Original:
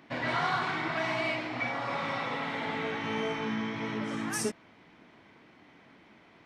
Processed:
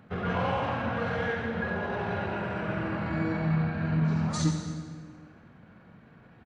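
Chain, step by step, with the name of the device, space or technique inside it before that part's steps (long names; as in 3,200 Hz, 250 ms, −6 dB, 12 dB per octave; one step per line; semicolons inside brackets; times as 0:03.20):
monster voice (pitch shifter −5.5 semitones; low-shelf EQ 240 Hz +9 dB; single-tap delay 88 ms −10 dB; convolution reverb RT60 1.7 s, pre-delay 105 ms, DRR 6.5 dB)
level −1.5 dB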